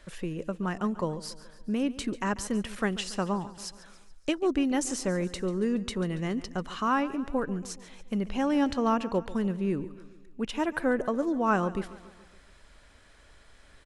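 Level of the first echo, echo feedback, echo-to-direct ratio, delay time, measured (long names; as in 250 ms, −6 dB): −17.0 dB, 54%, −15.5 dB, 141 ms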